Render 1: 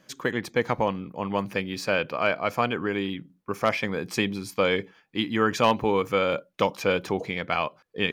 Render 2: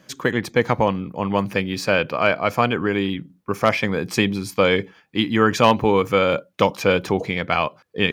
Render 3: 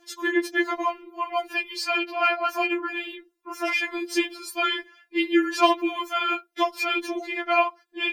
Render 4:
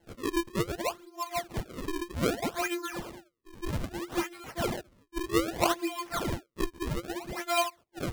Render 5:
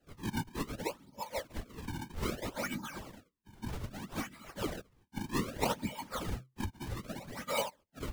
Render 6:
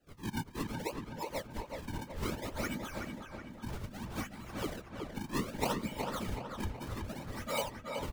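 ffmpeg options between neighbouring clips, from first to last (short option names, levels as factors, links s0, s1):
-af "highpass=63,lowshelf=f=100:g=8.5,volume=1.88"
-af "afftfilt=real='re*4*eq(mod(b,16),0)':imag='im*4*eq(mod(b,16),0)':win_size=2048:overlap=0.75"
-af "acrusher=samples=36:mix=1:aa=0.000001:lfo=1:lforange=57.6:lforate=0.63,volume=0.473"
-af "afftfilt=real='hypot(re,im)*cos(2*PI*random(0))':imag='hypot(re,im)*sin(2*PI*random(1))':win_size=512:overlap=0.75,afreqshift=-130"
-filter_complex "[0:a]asplit=2[s0][s1];[s1]adelay=374,lowpass=f=3100:p=1,volume=0.631,asplit=2[s2][s3];[s3]adelay=374,lowpass=f=3100:p=1,volume=0.53,asplit=2[s4][s5];[s5]adelay=374,lowpass=f=3100:p=1,volume=0.53,asplit=2[s6][s7];[s7]adelay=374,lowpass=f=3100:p=1,volume=0.53,asplit=2[s8][s9];[s9]adelay=374,lowpass=f=3100:p=1,volume=0.53,asplit=2[s10][s11];[s11]adelay=374,lowpass=f=3100:p=1,volume=0.53,asplit=2[s12][s13];[s13]adelay=374,lowpass=f=3100:p=1,volume=0.53[s14];[s0][s2][s4][s6][s8][s10][s12][s14]amix=inputs=8:normalize=0,volume=0.841"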